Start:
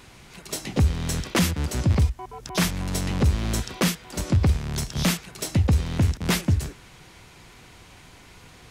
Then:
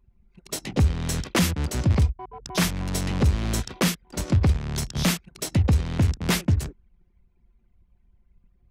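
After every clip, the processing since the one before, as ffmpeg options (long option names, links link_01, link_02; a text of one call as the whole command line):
ffmpeg -i in.wav -af "anlmdn=2.51" out.wav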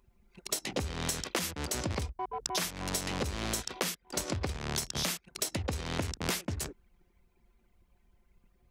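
ffmpeg -i in.wav -af "bass=frequency=250:gain=-12,treble=frequency=4000:gain=4,acompressor=threshold=-35dB:ratio=10,volume=5dB" out.wav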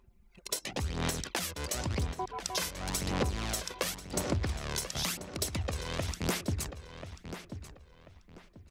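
ffmpeg -i in.wav -filter_complex "[0:a]aphaser=in_gain=1:out_gain=1:delay=2:decay=0.48:speed=0.94:type=sinusoidal,asplit=2[link_01][link_02];[link_02]adelay=1038,lowpass=frequency=3900:poles=1,volume=-10dB,asplit=2[link_03][link_04];[link_04]adelay=1038,lowpass=frequency=3900:poles=1,volume=0.29,asplit=2[link_05][link_06];[link_06]adelay=1038,lowpass=frequency=3900:poles=1,volume=0.29[link_07];[link_01][link_03][link_05][link_07]amix=inputs=4:normalize=0,volume=-2dB" out.wav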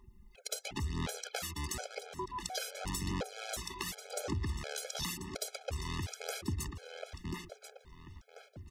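ffmpeg -i in.wav -af "acompressor=threshold=-40dB:ratio=2.5,afftfilt=real='re*gt(sin(2*PI*1.4*pts/sr)*(1-2*mod(floor(b*sr/1024/430),2)),0)':imag='im*gt(sin(2*PI*1.4*pts/sr)*(1-2*mod(floor(b*sr/1024/430),2)),0)':win_size=1024:overlap=0.75,volume=5dB" out.wav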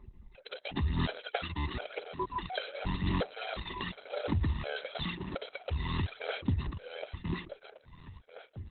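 ffmpeg -i in.wav -af "volume=6.5dB" -ar 48000 -c:a libopus -b:a 8k out.opus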